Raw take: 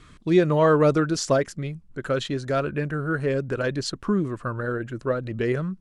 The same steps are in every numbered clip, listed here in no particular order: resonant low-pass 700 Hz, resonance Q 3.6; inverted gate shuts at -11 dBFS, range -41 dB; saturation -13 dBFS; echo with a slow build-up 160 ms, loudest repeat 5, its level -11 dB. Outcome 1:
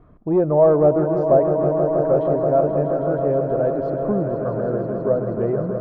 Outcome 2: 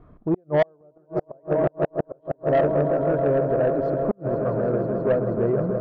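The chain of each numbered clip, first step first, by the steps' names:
echo with a slow build-up > saturation > inverted gate > resonant low-pass; echo with a slow build-up > inverted gate > resonant low-pass > saturation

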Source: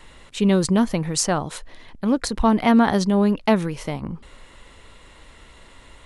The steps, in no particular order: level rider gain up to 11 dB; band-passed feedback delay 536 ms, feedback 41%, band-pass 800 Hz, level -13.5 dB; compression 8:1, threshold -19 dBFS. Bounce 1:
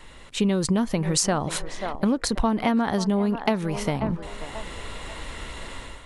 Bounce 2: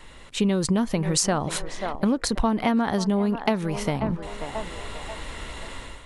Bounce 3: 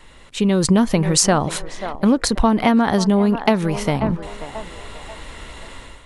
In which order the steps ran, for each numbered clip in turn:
level rider > band-passed feedback delay > compression; band-passed feedback delay > level rider > compression; band-passed feedback delay > compression > level rider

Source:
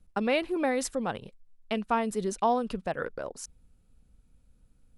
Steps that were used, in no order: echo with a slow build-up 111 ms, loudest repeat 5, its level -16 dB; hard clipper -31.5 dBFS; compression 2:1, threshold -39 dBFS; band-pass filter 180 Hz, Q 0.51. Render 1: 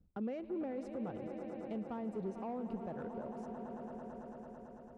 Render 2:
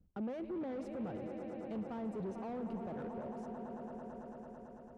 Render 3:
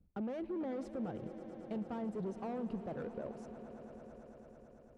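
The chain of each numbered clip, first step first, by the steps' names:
echo with a slow build-up > compression > hard clipper > band-pass filter; echo with a slow build-up > hard clipper > compression > band-pass filter; hard clipper > band-pass filter > compression > echo with a slow build-up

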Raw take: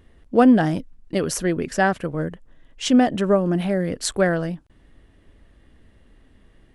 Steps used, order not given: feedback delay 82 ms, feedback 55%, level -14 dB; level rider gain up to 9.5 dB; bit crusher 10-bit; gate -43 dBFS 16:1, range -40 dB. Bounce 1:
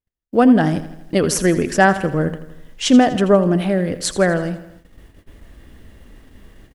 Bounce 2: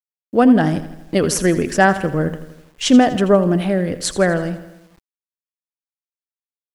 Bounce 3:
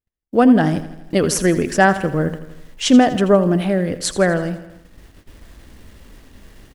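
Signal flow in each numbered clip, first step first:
level rider > feedback delay > bit crusher > gate; gate > feedback delay > bit crusher > level rider; bit crusher > feedback delay > level rider > gate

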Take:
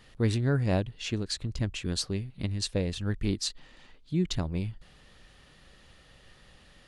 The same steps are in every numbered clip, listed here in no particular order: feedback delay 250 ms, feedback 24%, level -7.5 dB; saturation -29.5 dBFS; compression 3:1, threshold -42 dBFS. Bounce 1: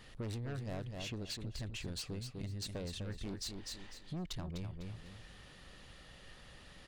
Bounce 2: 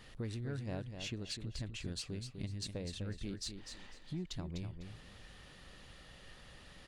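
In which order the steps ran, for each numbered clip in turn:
saturation > feedback delay > compression; compression > saturation > feedback delay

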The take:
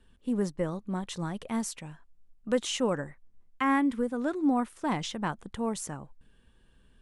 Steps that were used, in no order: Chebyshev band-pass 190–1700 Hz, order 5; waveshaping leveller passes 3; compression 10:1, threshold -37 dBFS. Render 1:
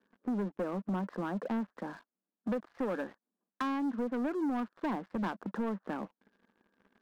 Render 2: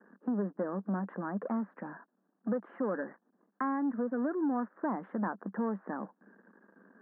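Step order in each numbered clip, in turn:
compression > Chebyshev band-pass > waveshaping leveller; compression > waveshaping leveller > Chebyshev band-pass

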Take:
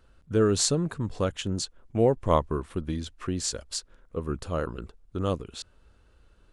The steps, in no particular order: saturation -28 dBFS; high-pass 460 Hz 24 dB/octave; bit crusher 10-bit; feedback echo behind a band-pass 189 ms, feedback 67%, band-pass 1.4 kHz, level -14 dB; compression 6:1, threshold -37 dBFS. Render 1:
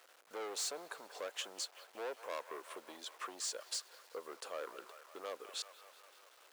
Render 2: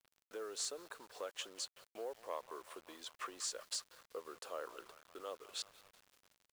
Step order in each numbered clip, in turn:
saturation > feedback echo behind a band-pass > compression > bit crusher > high-pass; compression > feedback echo behind a band-pass > saturation > high-pass > bit crusher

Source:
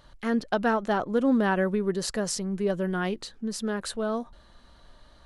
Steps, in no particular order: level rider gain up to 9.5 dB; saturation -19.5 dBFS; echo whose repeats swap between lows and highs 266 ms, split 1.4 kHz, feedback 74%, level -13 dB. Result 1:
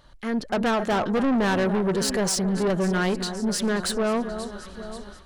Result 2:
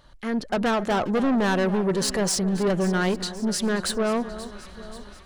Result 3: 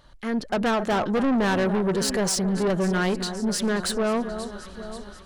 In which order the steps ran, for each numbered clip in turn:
echo whose repeats swap between lows and highs > level rider > saturation; level rider > saturation > echo whose repeats swap between lows and highs; level rider > echo whose repeats swap between lows and highs > saturation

